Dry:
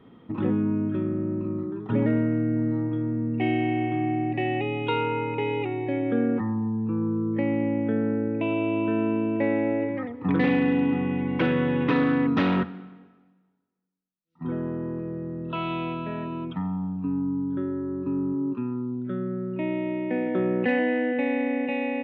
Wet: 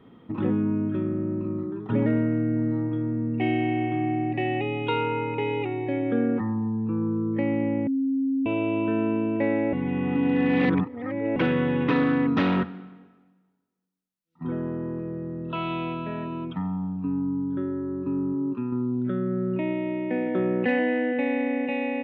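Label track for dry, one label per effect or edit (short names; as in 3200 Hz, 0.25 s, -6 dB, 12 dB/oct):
7.870000	8.460000	bleep 269 Hz -21.5 dBFS
9.730000	11.360000	reverse
18.720000	19.730000	fast leveller amount 100%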